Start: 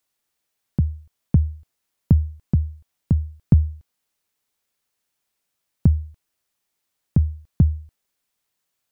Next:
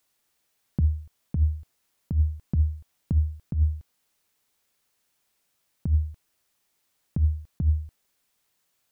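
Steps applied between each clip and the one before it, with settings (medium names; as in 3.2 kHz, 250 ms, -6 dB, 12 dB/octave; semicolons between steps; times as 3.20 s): compressor with a negative ratio -21 dBFS, ratio -1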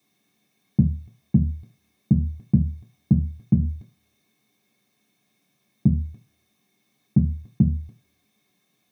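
peak limiter -21 dBFS, peak gain reduction 7 dB; reverberation RT60 0.30 s, pre-delay 3 ms, DRR -4 dB; trim -3 dB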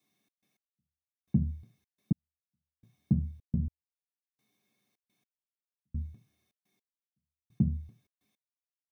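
trance gate "xx.x.....xx" 106 bpm -60 dB; trim -8.5 dB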